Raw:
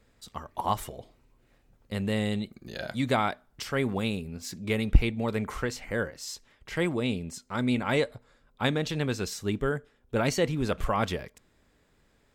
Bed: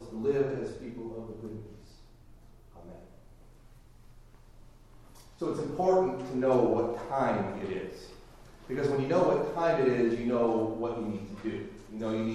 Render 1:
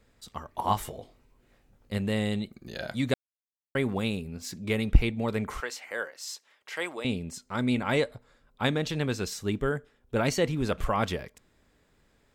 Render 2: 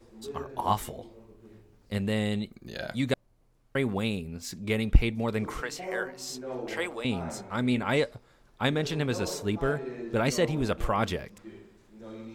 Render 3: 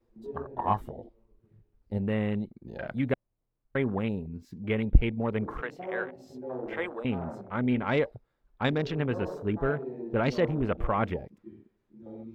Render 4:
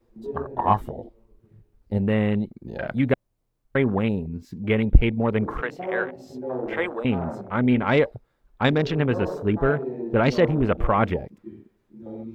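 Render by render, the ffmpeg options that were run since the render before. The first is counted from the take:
-filter_complex "[0:a]asettb=1/sr,asplit=3[a][b][c];[a]atrim=end=0.604[d];[b]atrim=start=0.6:end=1.98,asetpts=PTS-STARTPTS,afade=t=in:d=0.004:c=qsin,afade=t=out:st=1.376:d=0.004:c=qsin,asplit=2[e][f];[f]adelay=20,volume=-5.5dB[g];[e][g]amix=inputs=2:normalize=0,atrim=end_sample=60858[h];[c]atrim=start=1.976[i];[d][h]acrossfade=d=0.004:c1=hsin:c2=qsin[j];[j][i]acrossfade=d=0.004:c1=qsin:c2=hsin,asettb=1/sr,asplit=3[k][l][m];[k]atrim=end=5.604[n];[l]atrim=start=5.6:end=7.05,asetpts=PTS-STARTPTS,afade=t=in:d=0.004:c=qsin,afade=t=out:st=1.446:d=0.004:c=qsin,highpass=610[o];[m]atrim=start=7.046[p];[n][o]acrossfade=d=0.004:c1=hsin:c2=qsin[q];[q][p]acrossfade=d=0.004:c1=qsin:c2=hsin,asplit=3[r][s][t];[r]atrim=end=3.14,asetpts=PTS-STARTPTS,afade=t=out:st=3.136:d=0.004:c=hsin[u];[s]atrim=start=3.14:end=3.75,asetpts=PTS-STARTPTS,volume=0[v];[t]atrim=start=3.75,asetpts=PTS-STARTPTS,afade=t=in:d=0.004:c=hsin[w];[u][v][w]concat=n=3:v=0:a=1"
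-filter_complex "[1:a]volume=-11.5dB[a];[0:a][a]amix=inputs=2:normalize=0"
-af "afwtdn=0.0126,equalizer=f=8.1k:t=o:w=1.7:g=-11"
-af "volume=7dB,alimiter=limit=-3dB:level=0:latency=1"

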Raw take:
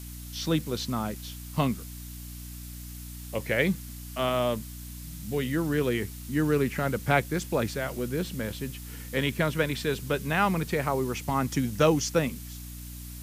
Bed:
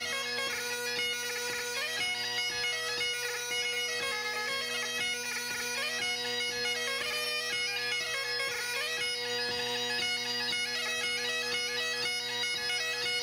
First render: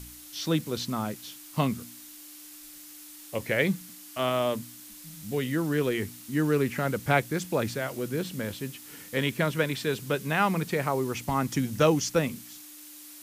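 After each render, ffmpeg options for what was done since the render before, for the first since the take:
-af "bandreject=f=60:t=h:w=4,bandreject=f=120:t=h:w=4,bandreject=f=180:t=h:w=4,bandreject=f=240:t=h:w=4"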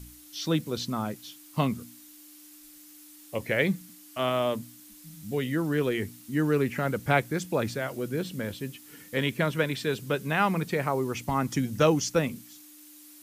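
-af "afftdn=nr=6:nf=-47"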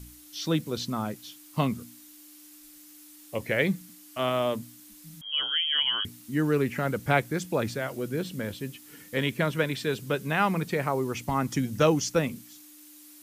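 -filter_complex "[0:a]asettb=1/sr,asplit=3[a][b][c];[a]atrim=end=5.214[d];[b]atrim=start=5.21:end=6.05,asetpts=PTS-STARTPTS,afade=t=in:d=0.004:c=qsin,afade=t=out:st=0.836:d=0.004:c=qsin,lowpass=f=2.9k:t=q:w=0.5098,lowpass=f=2.9k:t=q:w=0.6013,lowpass=f=2.9k:t=q:w=0.9,lowpass=f=2.9k:t=q:w=2.563,afreqshift=-3400[e];[c]atrim=start=6.046[f];[d][e]acrossfade=d=0.004:c1=hsin:c2=qsin[g];[g][f]acrossfade=d=0.004:c1=qsin:c2=hsin"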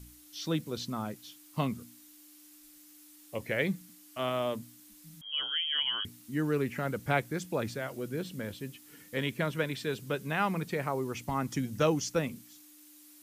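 -af "volume=-5dB"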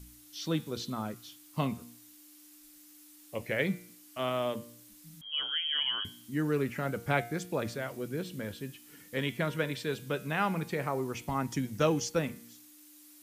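-af "bandreject=f=117.8:t=h:w=4,bandreject=f=235.6:t=h:w=4,bandreject=f=353.4:t=h:w=4,bandreject=f=471.2:t=h:w=4,bandreject=f=589:t=h:w=4,bandreject=f=706.8:t=h:w=4,bandreject=f=824.6:t=h:w=4,bandreject=f=942.4:t=h:w=4,bandreject=f=1.0602k:t=h:w=4,bandreject=f=1.178k:t=h:w=4,bandreject=f=1.2958k:t=h:w=4,bandreject=f=1.4136k:t=h:w=4,bandreject=f=1.5314k:t=h:w=4,bandreject=f=1.6492k:t=h:w=4,bandreject=f=1.767k:t=h:w=4,bandreject=f=1.8848k:t=h:w=4,bandreject=f=2.0026k:t=h:w=4,bandreject=f=2.1204k:t=h:w=4,bandreject=f=2.2382k:t=h:w=4,bandreject=f=2.356k:t=h:w=4,bandreject=f=2.4738k:t=h:w=4,bandreject=f=2.5916k:t=h:w=4,bandreject=f=2.7094k:t=h:w=4,bandreject=f=2.8272k:t=h:w=4,bandreject=f=2.945k:t=h:w=4,bandreject=f=3.0628k:t=h:w=4,bandreject=f=3.1806k:t=h:w=4,bandreject=f=3.2984k:t=h:w=4,bandreject=f=3.4162k:t=h:w=4,bandreject=f=3.534k:t=h:w=4,bandreject=f=3.6518k:t=h:w=4,bandreject=f=3.7696k:t=h:w=4,bandreject=f=3.8874k:t=h:w=4,bandreject=f=4.0052k:t=h:w=4,bandreject=f=4.123k:t=h:w=4,bandreject=f=4.2408k:t=h:w=4,bandreject=f=4.3586k:t=h:w=4,bandreject=f=4.4764k:t=h:w=4"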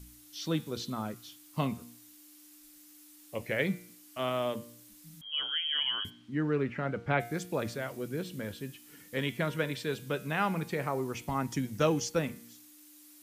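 -filter_complex "[0:a]asplit=3[a][b][c];[a]afade=t=out:st=6.09:d=0.02[d];[b]lowpass=3.1k,afade=t=in:st=6.09:d=0.02,afade=t=out:st=7.19:d=0.02[e];[c]afade=t=in:st=7.19:d=0.02[f];[d][e][f]amix=inputs=3:normalize=0"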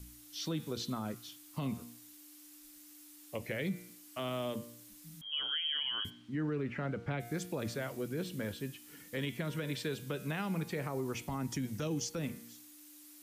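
-filter_complex "[0:a]acrossover=split=400|3000[a][b][c];[b]acompressor=threshold=-37dB:ratio=6[d];[a][d][c]amix=inputs=3:normalize=0,alimiter=level_in=3.5dB:limit=-24dB:level=0:latency=1:release=82,volume=-3.5dB"

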